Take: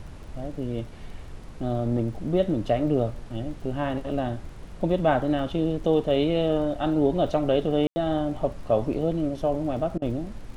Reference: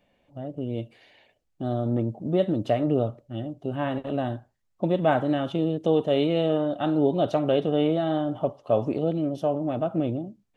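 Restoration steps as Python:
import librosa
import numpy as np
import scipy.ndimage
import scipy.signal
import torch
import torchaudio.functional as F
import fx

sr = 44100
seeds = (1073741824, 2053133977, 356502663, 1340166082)

y = fx.fix_declick_ar(x, sr, threshold=6.5)
y = fx.fix_ambience(y, sr, seeds[0], print_start_s=1.11, print_end_s=1.61, start_s=7.87, end_s=7.96)
y = fx.fix_interpolate(y, sr, at_s=(9.98,), length_ms=38.0)
y = fx.noise_reduce(y, sr, print_start_s=1.11, print_end_s=1.61, reduce_db=26.0)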